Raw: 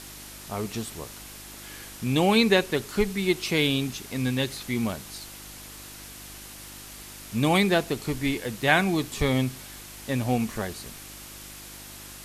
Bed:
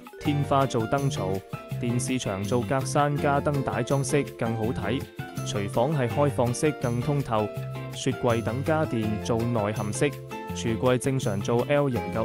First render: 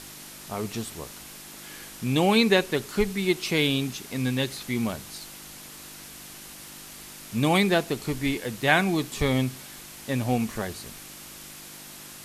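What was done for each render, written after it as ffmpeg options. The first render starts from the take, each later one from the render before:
-af "bandreject=f=50:t=h:w=4,bandreject=f=100:t=h:w=4"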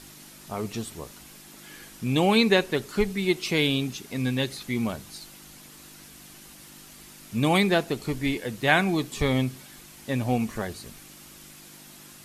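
-af "afftdn=nr=6:nf=-44"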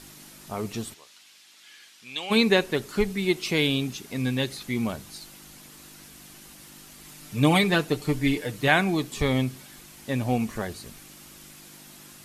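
-filter_complex "[0:a]asplit=3[a][b][c];[a]afade=t=out:st=0.93:d=0.02[d];[b]bandpass=f=3.5k:t=q:w=1,afade=t=in:st=0.93:d=0.02,afade=t=out:st=2.3:d=0.02[e];[c]afade=t=in:st=2.3:d=0.02[f];[d][e][f]amix=inputs=3:normalize=0,asettb=1/sr,asplit=3[g][h][i];[g]atrim=end=7.044[j];[h]atrim=start=7.04:end=8.68,asetpts=PTS-STARTPTS,afade=t=in:d=0.004:c=qsin,afade=t=out:st=1.636:d=0.004:c=qsin,aecho=1:1:6.7:0.65,atrim=end_sample=72324[k];[i]atrim=start=8.676[l];[j][k]acrossfade=d=0.004:c1=hsin:c2=qsin[m];[m][l]acrossfade=d=0.004:c1=qsin:c2=hsin"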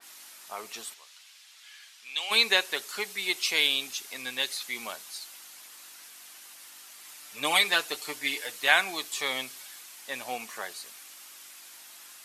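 -af "highpass=860,adynamicequalizer=threshold=0.0126:dfrequency=2800:dqfactor=0.7:tfrequency=2800:tqfactor=0.7:attack=5:release=100:ratio=0.375:range=2.5:mode=boostabove:tftype=highshelf"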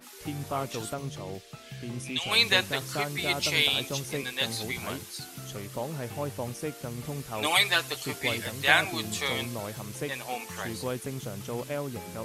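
-filter_complex "[1:a]volume=-10.5dB[a];[0:a][a]amix=inputs=2:normalize=0"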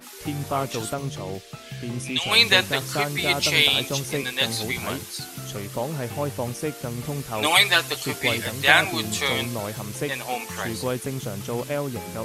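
-af "volume=6dB,alimiter=limit=-1dB:level=0:latency=1"

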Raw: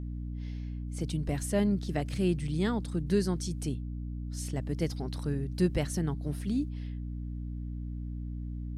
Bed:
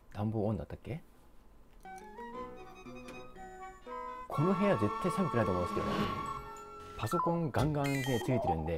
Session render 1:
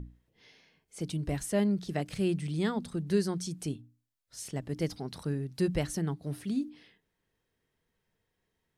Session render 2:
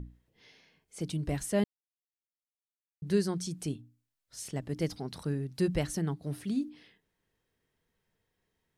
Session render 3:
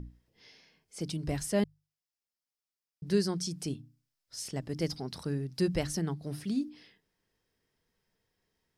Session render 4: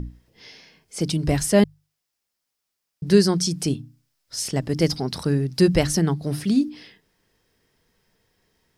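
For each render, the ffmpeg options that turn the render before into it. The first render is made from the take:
-af "bandreject=f=60:t=h:w=6,bandreject=f=120:t=h:w=6,bandreject=f=180:t=h:w=6,bandreject=f=240:t=h:w=6,bandreject=f=300:t=h:w=6"
-filter_complex "[0:a]asplit=3[a][b][c];[a]atrim=end=1.64,asetpts=PTS-STARTPTS,afade=t=out:st=1.636:d=0.004:c=hsin[d];[b]atrim=start=1.64:end=3.02,asetpts=PTS-STARTPTS,volume=0[e];[c]atrim=start=3.02,asetpts=PTS-STARTPTS,afade=t=in:d=0.004:c=hsin[f];[d][e][f]concat=n=3:v=0:a=1"
-af "equalizer=f=5.1k:t=o:w=0.32:g=8.5,bandreject=f=50:t=h:w=6,bandreject=f=100:t=h:w=6,bandreject=f=150:t=h:w=6"
-af "volume=12dB"

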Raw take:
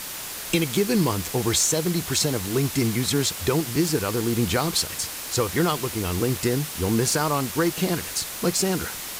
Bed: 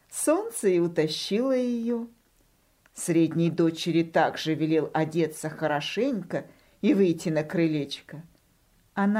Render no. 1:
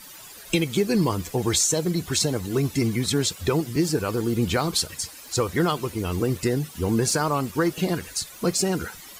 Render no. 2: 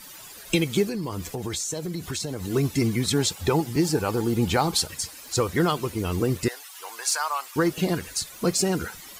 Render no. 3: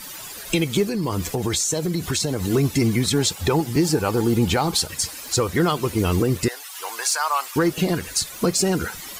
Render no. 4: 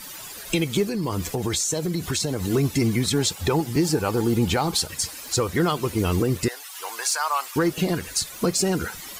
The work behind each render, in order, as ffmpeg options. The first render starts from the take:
-af "afftdn=nr=14:nf=-34"
-filter_complex "[0:a]asettb=1/sr,asplit=3[a][b][c];[a]atrim=end=0.844[d];[b]atrim=start=0.84:end=2.45,asetpts=PTS-STARTPTS,afade=t=in:d=0.004:c=qsin,afade=t=out:st=1.606:d=0.004:c=qsin,acompressor=threshold=-27dB:ratio=5:attack=3.2:release=140:knee=1:detection=peak[e];[c]atrim=start=2.446[f];[d][e]acrossfade=d=0.004:c1=hsin:c2=qsin[g];[g][f]acrossfade=d=0.004:c1=qsin:c2=hsin,asettb=1/sr,asplit=3[h][i][j];[h]atrim=end=3.174[k];[i]atrim=start=3.17:end=4.88,asetpts=PTS-STARTPTS,afade=t=in:d=0.004:c=qsin,afade=t=out:st=1.706:d=0.004:c=qsin,equalizer=f=830:w=7.2:g=11.5[l];[j]atrim=start=4.876[m];[k][l]acrossfade=d=0.004:c1=hsin:c2=qsin[n];[n][m]acrossfade=d=0.004:c1=qsin:c2=hsin,asettb=1/sr,asplit=3[o][p][q];[o]atrim=end=6.484[r];[p]atrim=start=6.48:end=7.56,asetpts=PTS-STARTPTS,afade=t=in:d=0.004:c=qsin,afade=t=out:st=1.076:d=0.004:c=qsin,highpass=f=810:w=0.5412,highpass=f=810:w=1.3066[s];[q]atrim=start=7.556[t];[r][s]acrossfade=d=0.004:c1=hsin:c2=qsin[u];[u][t]acrossfade=d=0.004:c1=qsin:c2=hsin"
-af "acontrast=90,alimiter=limit=-10.5dB:level=0:latency=1:release=310"
-af "volume=-2dB"

